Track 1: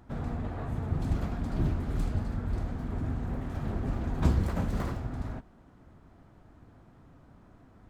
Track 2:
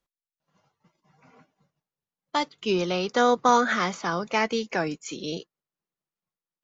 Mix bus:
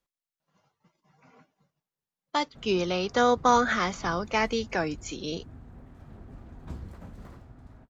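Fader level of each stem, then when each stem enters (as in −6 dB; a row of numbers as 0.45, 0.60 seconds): −14.5, −1.5 decibels; 2.45, 0.00 seconds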